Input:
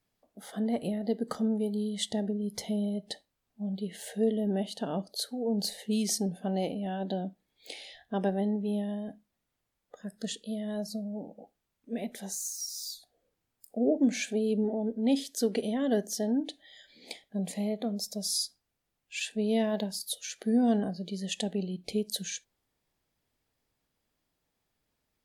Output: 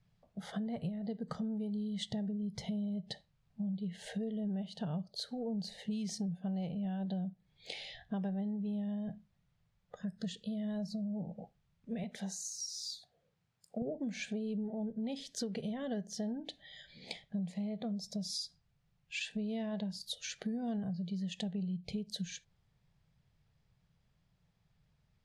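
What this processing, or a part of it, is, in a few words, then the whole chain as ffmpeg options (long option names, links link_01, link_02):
jukebox: -filter_complex "[0:a]asettb=1/sr,asplit=3[link_01][link_02][link_03];[link_01]atrim=end=12.034[link_04];[link_02]atrim=start=12.03:end=13.82,asetpts=PTS-STARTPTS,afade=type=in:duration=0.004:curve=qsin,afade=type=out:start_time=1.786:duration=0.004:curve=qsin,highpass=frequency=240:poles=1[link_05];[link_03]atrim=start=13.816[link_06];[link_04][link_05]acrossfade=duration=0.004:curve1=hsin:curve2=qsin[link_07];[link_07][link_06]acrossfade=duration=0.004:curve1=qsin:curve2=hsin,lowpass=5300,lowshelf=frequency=210:width_type=q:width=3:gain=9.5,acompressor=threshold=-37dB:ratio=6,volume=1dB"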